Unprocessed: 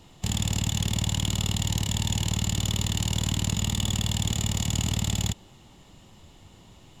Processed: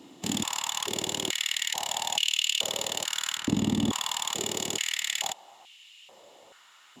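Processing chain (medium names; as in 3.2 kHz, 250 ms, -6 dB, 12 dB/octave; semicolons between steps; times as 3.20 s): 3.37–3.92 s: tilt EQ -2.5 dB/octave; step-sequenced high-pass 2.3 Hz 280–2700 Hz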